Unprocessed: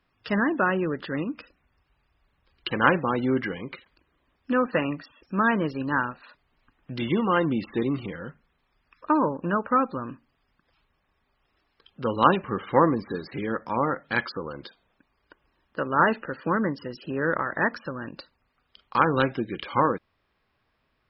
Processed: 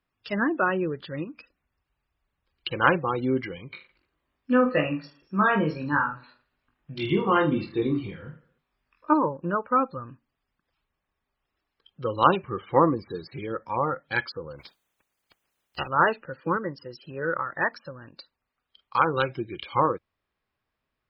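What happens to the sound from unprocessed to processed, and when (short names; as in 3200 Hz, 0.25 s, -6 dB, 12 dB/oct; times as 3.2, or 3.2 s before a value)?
3.68–9.14 reverse bouncing-ball echo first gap 20 ms, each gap 1.25×, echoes 7
14.58–15.87 spectral limiter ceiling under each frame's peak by 28 dB
16.57–19.29 low shelf 280 Hz -4.5 dB
whole clip: spectral noise reduction 10 dB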